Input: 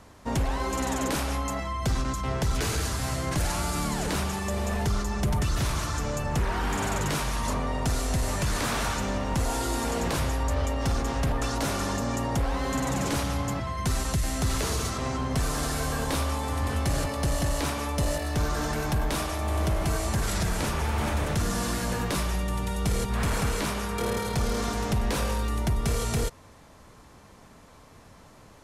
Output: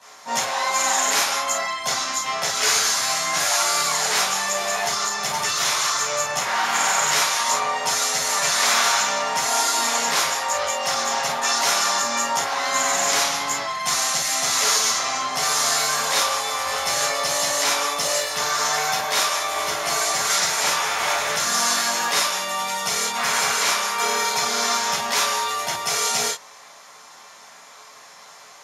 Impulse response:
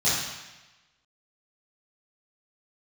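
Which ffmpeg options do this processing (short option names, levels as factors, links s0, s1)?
-filter_complex "[0:a]highpass=920[s0];[1:a]atrim=start_sample=2205,afade=t=out:st=0.13:d=0.01,atrim=end_sample=6174[s1];[s0][s1]afir=irnorm=-1:irlink=0"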